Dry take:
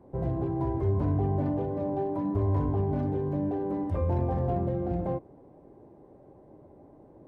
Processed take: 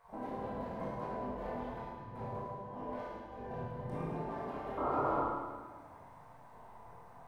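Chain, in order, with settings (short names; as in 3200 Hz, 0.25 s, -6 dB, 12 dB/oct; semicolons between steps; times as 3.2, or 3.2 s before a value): spectral gate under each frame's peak -15 dB weak; bell 120 Hz +10.5 dB 0.62 oct; compressor 5:1, threshold -52 dBFS, peak gain reduction 16.5 dB; 1.64–3.77 tremolo 1.6 Hz, depth 80%; 4.77–5.21 painted sound noise 260–1400 Hz -46 dBFS; chorus 0.95 Hz, delay 17 ms, depth 7.9 ms; split-band echo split 340 Hz, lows 0.154 s, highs 0.107 s, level -7 dB; Schroeder reverb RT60 1.1 s, combs from 25 ms, DRR -2.5 dB; gain +11.5 dB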